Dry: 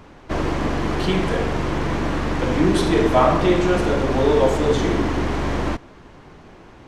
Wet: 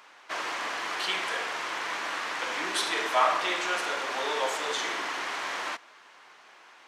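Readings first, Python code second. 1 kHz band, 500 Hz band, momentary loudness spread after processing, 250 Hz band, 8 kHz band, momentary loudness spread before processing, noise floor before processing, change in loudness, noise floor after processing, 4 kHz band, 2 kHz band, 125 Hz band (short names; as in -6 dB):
-5.5 dB, -15.5 dB, 8 LU, -24.0 dB, 0.0 dB, 8 LU, -45 dBFS, -9.0 dB, -54 dBFS, 0.0 dB, -1.0 dB, under -35 dB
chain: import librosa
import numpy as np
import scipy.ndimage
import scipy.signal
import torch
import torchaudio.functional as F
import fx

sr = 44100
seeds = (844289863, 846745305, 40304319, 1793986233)

y = scipy.signal.sosfilt(scipy.signal.butter(2, 1200.0, 'highpass', fs=sr, output='sos'), x)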